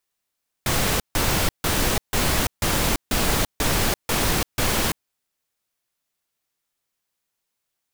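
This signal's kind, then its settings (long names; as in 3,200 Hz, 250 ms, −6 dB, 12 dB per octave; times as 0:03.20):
noise bursts pink, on 0.34 s, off 0.15 s, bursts 9, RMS −21 dBFS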